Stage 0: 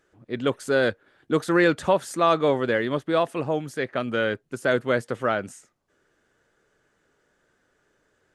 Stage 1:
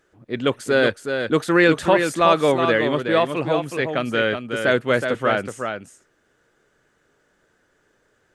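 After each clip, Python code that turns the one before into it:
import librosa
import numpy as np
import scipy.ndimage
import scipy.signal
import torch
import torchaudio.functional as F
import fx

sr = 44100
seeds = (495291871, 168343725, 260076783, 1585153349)

y = fx.dynamic_eq(x, sr, hz=2600.0, q=1.6, threshold_db=-42.0, ratio=4.0, max_db=5)
y = y + 10.0 ** (-6.5 / 20.0) * np.pad(y, (int(370 * sr / 1000.0), 0))[:len(y)]
y = F.gain(torch.from_numpy(y), 3.0).numpy()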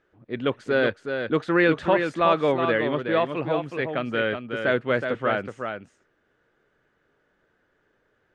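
y = scipy.signal.sosfilt(scipy.signal.butter(2, 3300.0, 'lowpass', fs=sr, output='sos'), x)
y = F.gain(torch.from_numpy(y), -4.0).numpy()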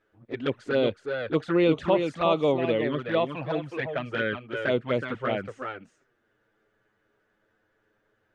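y = fx.env_flanger(x, sr, rest_ms=9.5, full_db=-18.0)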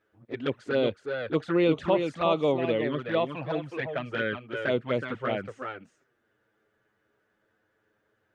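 y = scipy.signal.sosfilt(scipy.signal.butter(2, 42.0, 'highpass', fs=sr, output='sos'), x)
y = F.gain(torch.from_numpy(y), -1.5).numpy()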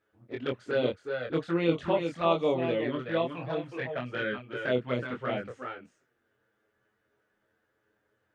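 y = fx.doubler(x, sr, ms=24.0, db=-3.0)
y = F.gain(torch.from_numpy(y), -4.0).numpy()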